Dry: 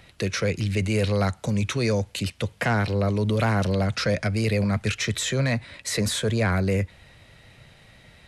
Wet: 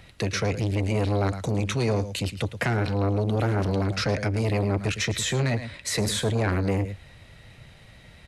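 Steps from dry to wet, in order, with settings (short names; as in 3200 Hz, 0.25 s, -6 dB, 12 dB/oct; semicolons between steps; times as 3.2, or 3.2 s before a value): low shelf 140 Hz +5 dB; echo 0.11 s -13 dB; core saturation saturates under 400 Hz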